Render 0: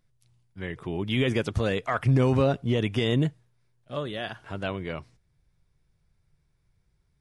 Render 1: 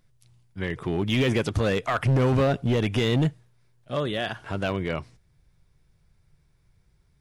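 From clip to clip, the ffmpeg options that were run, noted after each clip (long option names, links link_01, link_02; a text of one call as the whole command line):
ffmpeg -i in.wav -filter_complex "[0:a]asplit=2[link_01][link_02];[link_02]alimiter=limit=-23dB:level=0:latency=1:release=71,volume=0dB[link_03];[link_01][link_03]amix=inputs=2:normalize=0,asoftclip=type=hard:threshold=-17.5dB" out.wav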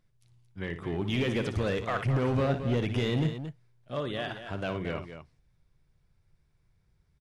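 ffmpeg -i in.wav -filter_complex "[0:a]highshelf=frequency=7100:gain=-6.5,asplit=2[link_01][link_02];[link_02]aecho=0:1:58.31|224.5:0.316|0.316[link_03];[link_01][link_03]amix=inputs=2:normalize=0,volume=-6dB" out.wav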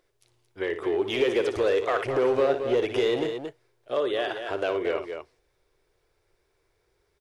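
ffmpeg -i in.wav -filter_complex "[0:a]lowshelf=frequency=270:width_type=q:width=3:gain=-13.5,asplit=2[link_01][link_02];[link_02]acompressor=threshold=-34dB:ratio=6,volume=2dB[link_03];[link_01][link_03]amix=inputs=2:normalize=0" out.wav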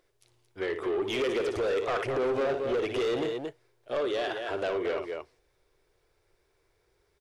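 ffmpeg -i in.wav -af "asoftclip=type=tanh:threshold=-24dB" out.wav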